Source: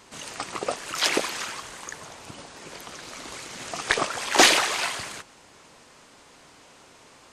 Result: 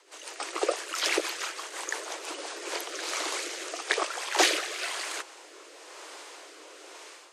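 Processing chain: steep high-pass 310 Hz 96 dB/oct; AGC gain up to 12 dB; rotary speaker horn 6 Hz, later 1 Hz, at 2.22; gain -3 dB

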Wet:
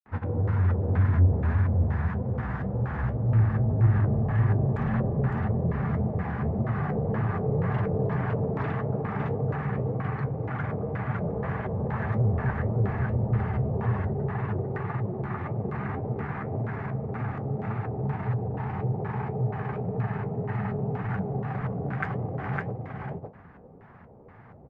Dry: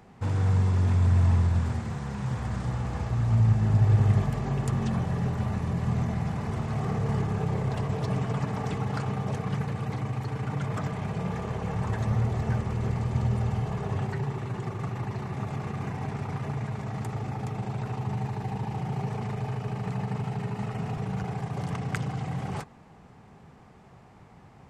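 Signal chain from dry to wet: grains, pitch spread up and down by 0 st; on a send: echo 0.558 s -3 dB; on the sum: soft clip -16 dBFS, distortion -19 dB; LFO low-pass square 2.1 Hz 540–1700 Hz; flange 1.8 Hz, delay 7.7 ms, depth 7.9 ms, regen +56%; gain +4.5 dB

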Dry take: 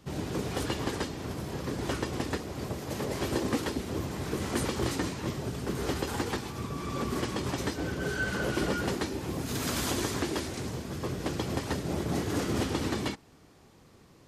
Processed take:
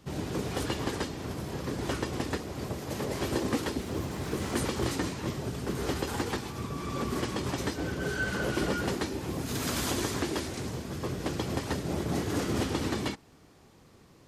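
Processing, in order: 3.81–4.59 sample gate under -52 dBFS

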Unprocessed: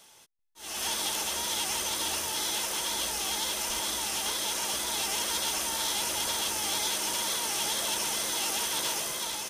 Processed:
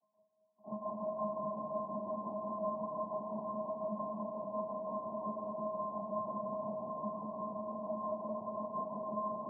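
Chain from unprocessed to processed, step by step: gate with hold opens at -43 dBFS; sine folder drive 10 dB, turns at -17 dBFS; chorus voices 6, 0.64 Hz, delay 25 ms, depth 4.8 ms; tremolo 5.7 Hz, depth 97%; overloaded stage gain 30 dB; noise vocoder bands 12; brick-wall FIR low-pass 1100 Hz; resonator 210 Hz, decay 0.19 s, harmonics odd, mix 100%; split-band echo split 750 Hz, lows 0.224 s, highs 0.303 s, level -5 dB; reverb RT60 2.4 s, pre-delay 19 ms, DRR 4.5 dB; gain +14 dB

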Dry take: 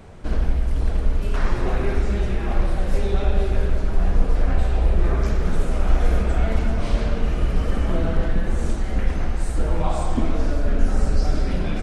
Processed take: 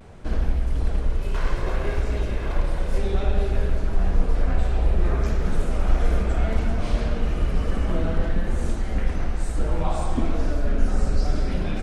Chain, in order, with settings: 1.03–2.98 minimum comb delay 1.9 ms; vibrato 0.61 Hz 39 cents; gain -2 dB

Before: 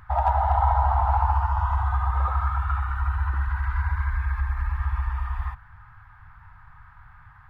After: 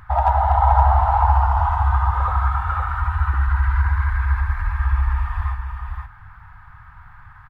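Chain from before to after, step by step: on a send: echo 0.518 s -5.5 dB; on the sum: gain +4.5 dB

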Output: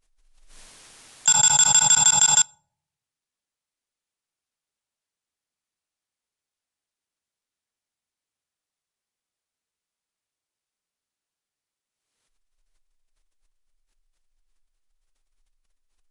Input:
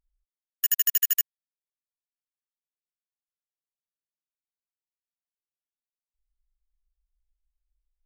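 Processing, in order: in parallel at -4 dB: soft clip -23 dBFS, distortion -11 dB; on the sum: reverb RT60 0.40 s, pre-delay 3 ms, DRR 17 dB; speed mistake 15 ips tape played at 7.5 ips; backwards sustainer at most 43 dB/s; gain +2 dB

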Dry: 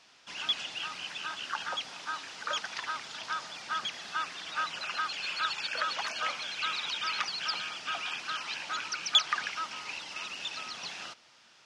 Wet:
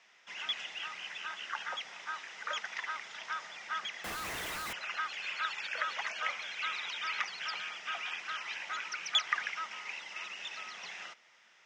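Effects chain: speaker cabinet 210–7400 Hz, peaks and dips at 280 Hz -9 dB, 2000 Hz +10 dB, 4400 Hz -9 dB; 4.04–4.73 Schmitt trigger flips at -45 dBFS; gain -4.5 dB

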